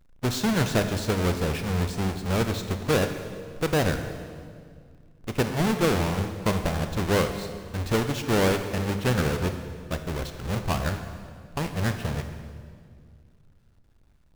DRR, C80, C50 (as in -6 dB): 7.0 dB, 9.0 dB, 8.0 dB